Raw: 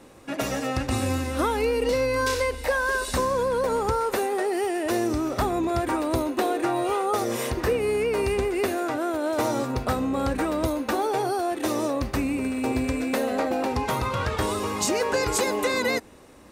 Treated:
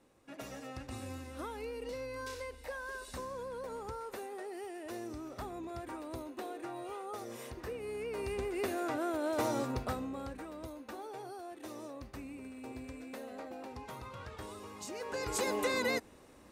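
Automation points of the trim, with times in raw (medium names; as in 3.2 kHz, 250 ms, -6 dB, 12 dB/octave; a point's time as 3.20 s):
7.72 s -18 dB
8.89 s -8 dB
9.70 s -8 dB
10.43 s -20 dB
14.86 s -20 dB
15.50 s -8 dB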